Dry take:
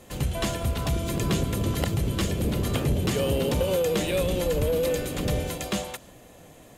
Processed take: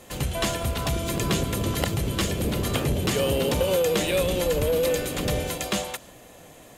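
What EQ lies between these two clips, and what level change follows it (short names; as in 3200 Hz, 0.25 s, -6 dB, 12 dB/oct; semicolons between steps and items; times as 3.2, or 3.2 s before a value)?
low shelf 390 Hz -5.5 dB; +4.0 dB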